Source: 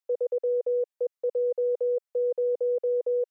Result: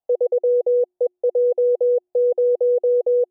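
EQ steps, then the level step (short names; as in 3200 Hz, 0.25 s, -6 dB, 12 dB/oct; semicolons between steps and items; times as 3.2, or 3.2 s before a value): synth low-pass 720 Hz, resonance Q 6.2; low shelf 330 Hz +10 dB; notches 60/120/180/240/300/360 Hz; 0.0 dB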